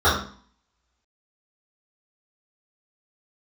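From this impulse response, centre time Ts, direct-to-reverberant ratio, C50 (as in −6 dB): 40 ms, −13.0 dB, 4.5 dB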